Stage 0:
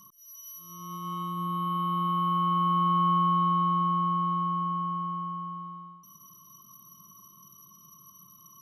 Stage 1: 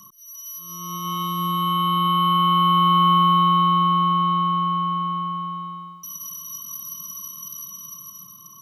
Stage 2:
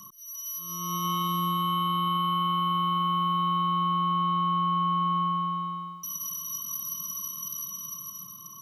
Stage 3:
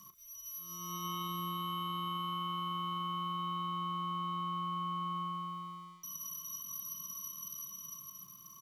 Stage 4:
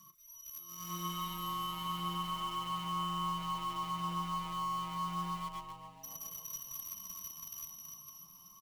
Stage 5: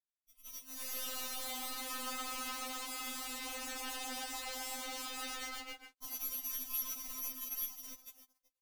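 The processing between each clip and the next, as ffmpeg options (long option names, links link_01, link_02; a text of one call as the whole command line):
ffmpeg -i in.wav -filter_complex "[0:a]equalizer=frequency=4700:width=1.5:gain=2.5,acrossover=split=380|1100|1800[link_01][link_02][link_03][link_04];[link_04]dynaudnorm=framelen=220:gausssize=9:maxgain=12dB[link_05];[link_01][link_02][link_03][link_05]amix=inputs=4:normalize=0,volume=6.5dB" out.wav
ffmpeg -i in.wav -af "alimiter=limit=-19.5dB:level=0:latency=1:release=29" out.wav
ffmpeg -i in.wav -filter_complex "[0:a]areverse,acompressor=mode=upward:threshold=-39dB:ratio=2.5,areverse,aeval=exprs='sgn(val(0))*max(abs(val(0))-0.002,0)':channel_layout=same,asplit=2[link_01][link_02];[link_02]adelay=37,volume=-10.5dB[link_03];[link_01][link_03]amix=inputs=2:normalize=0,volume=-8.5dB" out.wav
ffmpeg -i in.wav -filter_complex "[0:a]flanger=delay=6.2:depth=7.4:regen=18:speed=0.32:shape=sinusoidal,asplit=2[link_01][link_02];[link_02]acrusher=bits=6:mix=0:aa=0.000001,volume=-8dB[link_03];[link_01][link_03]amix=inputs=2:normalize=0,asplit=5[link_04][link_05][link_06][link_07][link_08];[link_05]adelay=275,afreqshift=-150,volume=-13dB[link_09];[link_06]adelay=550,afreqshift=-300,volume=-20.1dB[link_10];[link_07]adelay=825,afreqshift=-450,volume=-27.3dB[link_11];[link_08]adelay=1100,afreqshift=-600,volume=-34.4dB[link_12];[link_04][link_09][link_10][link_11][link_12]amix=inputs=5:normalize=0" out.wav
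ffmpeg -i in.wav -af "acrusher=bits=6:mix=0:aa=0.5,afftfilt=real='re*3.46*eq(mod(b,12),0)':imag='im*3.46*eq(mod(b,12),0)':win_size=2048:overlap=0.75,volume=8.5dB" out.wav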